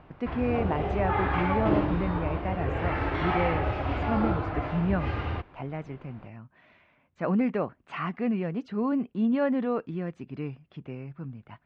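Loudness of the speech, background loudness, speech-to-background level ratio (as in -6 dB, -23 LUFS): -31.0 LUFS, -29.5 LUFS, -1.5 dB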